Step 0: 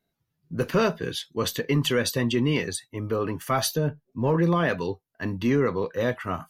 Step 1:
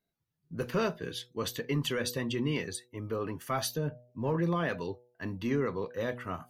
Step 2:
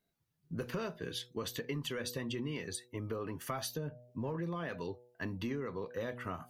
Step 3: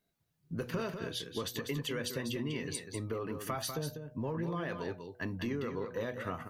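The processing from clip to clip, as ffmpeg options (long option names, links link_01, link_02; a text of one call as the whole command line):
ffmpeg -i in.wav -af "bandreject=frequency=122.2:width_type=h:width=4,bandreject=frequency=244.4:width_type=h:width=4,bandreject=frequency=366.6:width_type=h:width=4,bandreject=frequency=488.8:width_type=h:width=4,bandreject=frequency=611:width_type=h:width=4,bandreject=frequency=733.2:width_type=h:width=4,bandreject=frequency=855.4:width_type=h:width=4,volume=-7.5dB" out.wav
ffmpeg -i in.wav -af "acompressor=threshold=-38dB:ratio=6,volume=2.5dB" out.wav
ffmpeg -i in.wav -af "aecho=1:1:196:0.422,volume=1.5dB" out.wav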